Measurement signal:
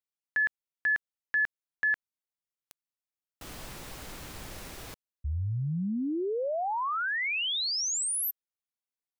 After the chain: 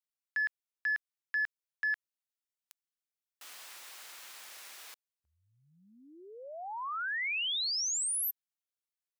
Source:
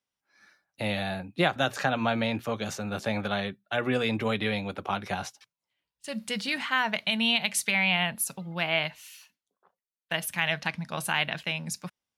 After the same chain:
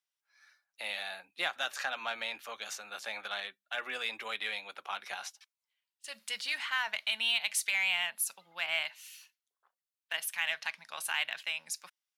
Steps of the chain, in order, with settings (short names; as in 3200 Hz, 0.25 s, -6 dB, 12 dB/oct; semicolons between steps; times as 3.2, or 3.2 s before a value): Bessel high-pass 1400 Hz, order 2; in parallel at -8 dB: hard clip -28 dBFS; on the sum: gain -5 dB